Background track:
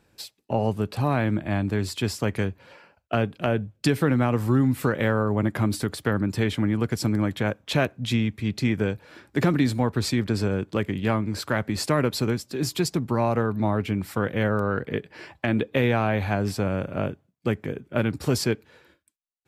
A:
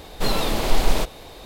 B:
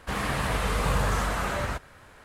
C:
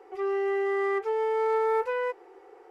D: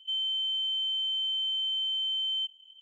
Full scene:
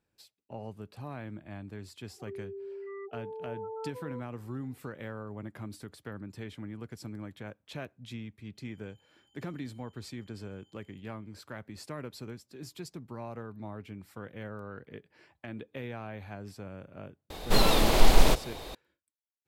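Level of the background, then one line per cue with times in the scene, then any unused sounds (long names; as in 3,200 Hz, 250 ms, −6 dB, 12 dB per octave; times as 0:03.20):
background track −18 dB
0:02.08: mix in C −13.5 dB + gate on every frequency bin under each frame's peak −10 dB strong
0:08.55: mix in D −14.5 dB + gate on every frequency bin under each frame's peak −10 dB weak
0:17.30: mix in A −0.5 dB
not used: B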